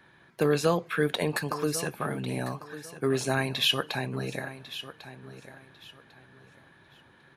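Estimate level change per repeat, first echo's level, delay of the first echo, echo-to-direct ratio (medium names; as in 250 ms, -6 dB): -11.5 dB, -14.0 dB, 1098 ms, -13.5 dB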